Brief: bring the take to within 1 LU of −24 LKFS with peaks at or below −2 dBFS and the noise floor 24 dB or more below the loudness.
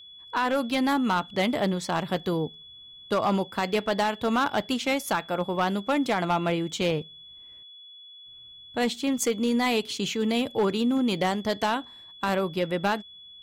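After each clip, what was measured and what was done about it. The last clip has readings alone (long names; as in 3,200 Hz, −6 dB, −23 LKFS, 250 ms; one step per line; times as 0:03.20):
share of clipped samples 1.2%; peaks flattened at −18.0 dBFS; interfering tone 3,400 Hz; level of the tone −45 dBFS; integrated loudness −26.5 LKFS; sample peak −18.0 dBFS; target loudness −24.0 LKFS
→ clipped peaks rebuilt −18 dBFS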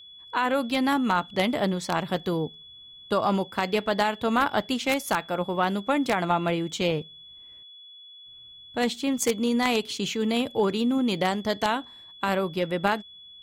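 share of clipped samples 0.0%; interfering tone 3,400 Hz; level of the tone −45 dBFS
→ notch filter 3,400 Hz, Q 30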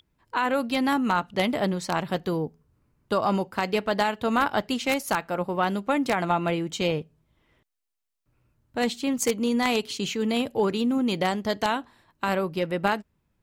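interfering tone none found; integrated loudness −26.0 LKFS; sample peak −9.0 dBFS; target loudness −24.0 LKFS
→ level +2 dB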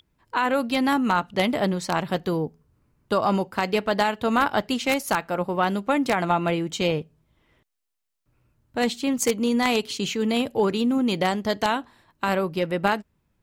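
integrated loudness −24.0 LKFS; sample peak −7.0 dBFS; background noise floor −72 dBFS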